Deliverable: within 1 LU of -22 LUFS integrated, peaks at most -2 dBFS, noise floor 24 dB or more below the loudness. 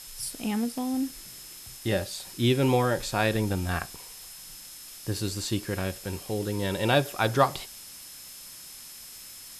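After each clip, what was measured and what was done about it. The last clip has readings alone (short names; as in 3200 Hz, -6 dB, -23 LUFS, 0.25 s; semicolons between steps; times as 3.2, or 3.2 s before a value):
steady tone 5200 Hz; tone level -50 dBFS; noise floor -45 dBFS; noise floor target -52 dBFS; loudness -28.0 LUFS; peak -8.0 dBFS; loudness target -22.0 LUFS
-> notch 5200 Hz, Q 30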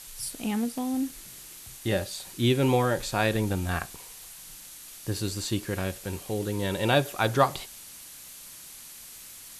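steady tone none; noise floor -46 dBFS; noise floor target -52 dBFS
-> noise print and reduce 6 dB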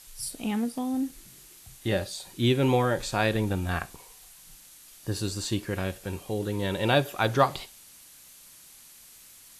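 noise floor -52 dBFS; loudness -28.0 LUFS; peak -8.5 dBFS; loudness target -22.0 LUFS
-> gain +6 dB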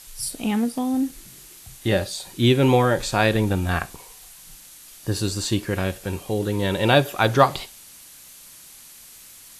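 loudness -22.0 LUFS; peak -2.5 dBFS; noise floor -46 dBFS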